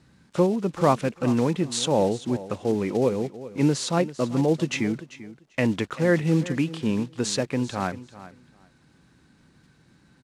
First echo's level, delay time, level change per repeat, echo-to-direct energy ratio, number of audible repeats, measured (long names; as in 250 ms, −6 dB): −16.0 dB, 392 ms, −16.0 dB, −16.0 dB, 2